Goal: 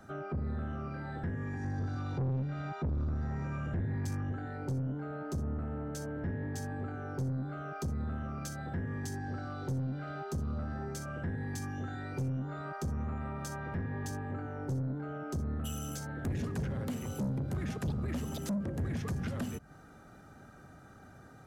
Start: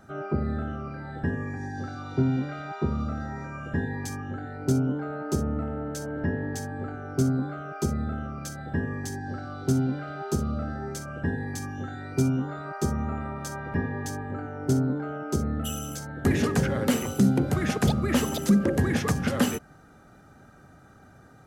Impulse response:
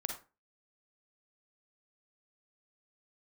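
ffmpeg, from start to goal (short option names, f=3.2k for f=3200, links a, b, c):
-filter_complex "[0:a]asettb=1/sr,asplit=3[a][b][c];[a]atrim=end=1.644[d];[b]atrim=start=1.64:end=4.32,asetpts=PTS-STARTPTS,afade=t=in:d=0.004:c=qsin,afade=t=out:st=2.676:d=0.004:c=qsin,lowshelf=f=260:g=8[e];[c]atrim=start=4.316[f];[d][e]acrossfade=d=0.004:c1=hsin:c2=qsin[g];[g][f]acrossfade=d=0.004:c1=qsin:c2=hsin,acrossover=split=180[h][i];[i]acompressor=threshold=-36dB:ratio=10[j];[h][j]amix=inputs=2:normalize=0,asoftclip=type=tanh:threshold=-28dB,volume=-1.5dB"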